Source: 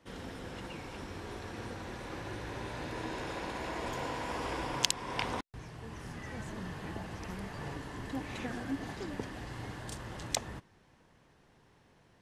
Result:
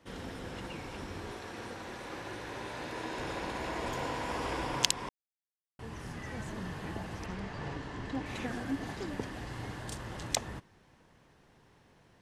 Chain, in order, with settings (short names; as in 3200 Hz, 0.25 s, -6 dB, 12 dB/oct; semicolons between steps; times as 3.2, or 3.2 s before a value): 1.31–3.18 low shelf 170 Hz -10.5 dB; 5.09–5.79 mute; 7.26–8.26 LPF 6000 Hz 12 dB/oct; gain +1.5 dB